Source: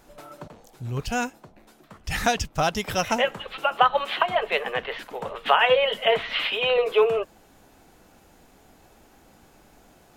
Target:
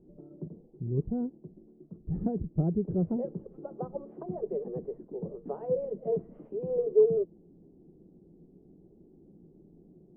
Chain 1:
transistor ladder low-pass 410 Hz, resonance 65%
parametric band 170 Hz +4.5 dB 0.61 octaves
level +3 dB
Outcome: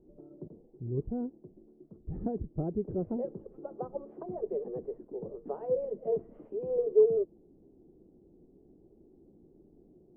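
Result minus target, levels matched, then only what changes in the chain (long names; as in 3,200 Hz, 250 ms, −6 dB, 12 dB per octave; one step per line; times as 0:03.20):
125 Hz band −5.0 dB
change: parametric band 170 Hz +14.5 dB 0.61 octaves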